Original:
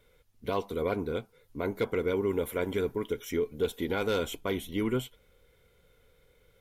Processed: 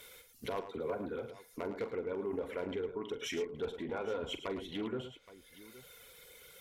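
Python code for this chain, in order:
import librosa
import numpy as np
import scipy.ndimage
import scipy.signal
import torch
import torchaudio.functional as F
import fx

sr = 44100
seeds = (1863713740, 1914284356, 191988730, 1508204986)

p1 = fx.dereverb_blind(x, sr, rt60_s=1.1)
p2 = fx.env_lowpass_down(p1, sr, base_hz=890.0, full_db=-29.5)
p3 = fx.tilt_eq(p2, sr, slope=3.5)
p4 = fx.over_compress(p3, sr, threshold_db=-48.0, ratio=-1.0)
p5 = p3 + (p4 * librosa.db_to_amplitude(1.0))
p6 = fx.dispersion(p5, sr, late='lows', ms=44.0, hz=990.0, at=(0.66, 1.58))
p7 = 10.0 ** (-25.5 / 20.0) * (np.abs((p6 / 10.0 ** (-25.5 / 20.0) + 3.0) % 4.0 - 2.0) - 1.0)
p8 = p7 + fx.echo_multitap(p7, sr, ms=(44, 108, 821), db=(-11.0, -10.5, -17.5), dry=0)
p9 = fx.doppler_dist(p8, sr, depth_ms=0.11)
y = p9 * librosa.db_to_amplitude(-3.5)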